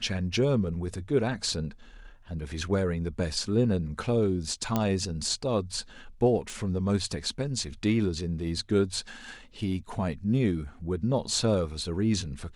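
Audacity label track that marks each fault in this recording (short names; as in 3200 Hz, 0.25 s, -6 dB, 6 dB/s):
4.760000	4.760000	pop -12 dBFS
6.500000	6.500000	pop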